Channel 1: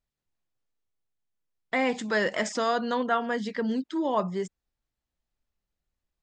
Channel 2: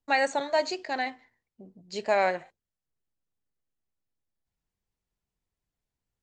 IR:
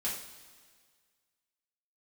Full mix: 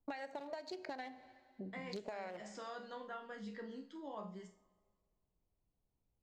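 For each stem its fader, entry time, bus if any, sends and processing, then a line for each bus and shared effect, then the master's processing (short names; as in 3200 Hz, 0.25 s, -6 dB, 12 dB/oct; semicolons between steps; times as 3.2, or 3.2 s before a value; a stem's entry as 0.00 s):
-8.0 dB, 0.00 s, send -14.5 dB, vocal rider 0.5 s; resonator bank C#2 sus4, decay 0.33 s
+2.5 dB, 0.00 s, send -15.5 dB, Wiener smoothing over 25 samples; compressor, threshold -33 dBFS, peak gain reduction 13 dB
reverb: on, pre-delay 3 ms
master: compressor 16:1, threshold -41 dBFS, peak gain reduction 15.5 dB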